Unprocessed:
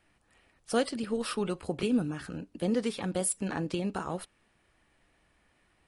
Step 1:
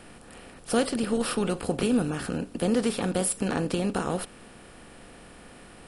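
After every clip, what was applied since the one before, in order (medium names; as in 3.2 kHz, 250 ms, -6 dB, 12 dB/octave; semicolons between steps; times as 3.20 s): spectral levelling over time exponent 0.6; bass shelf 71 Hz +9 dB; trim +1 dB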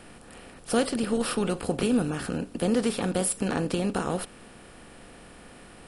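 no audible change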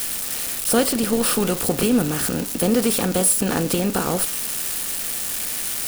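zero-crossing glitches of -22 dBFS; trim +5.5 dB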